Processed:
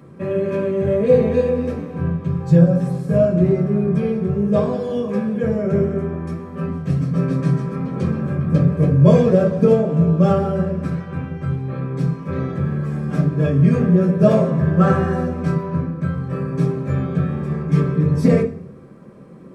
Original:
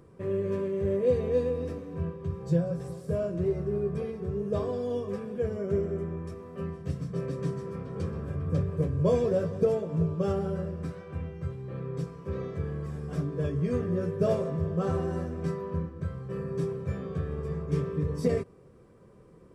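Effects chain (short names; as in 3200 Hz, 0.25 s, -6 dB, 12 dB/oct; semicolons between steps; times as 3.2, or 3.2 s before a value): 14.59–15.14 bell 1700 Hz +9 dB 0.57 oct; reverb RT60 0.45 s, pre-delay 3 ms, DRR -2 dB; gain +6 dB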